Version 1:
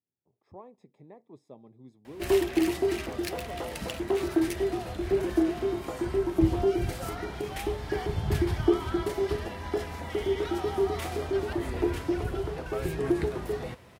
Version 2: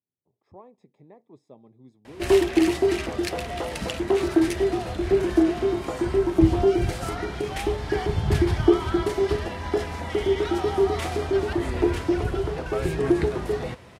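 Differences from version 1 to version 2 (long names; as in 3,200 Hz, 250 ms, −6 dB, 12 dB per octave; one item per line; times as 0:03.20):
background +5.5 dB
master: add low-pass filter 10,000 Hz 12 dB per octave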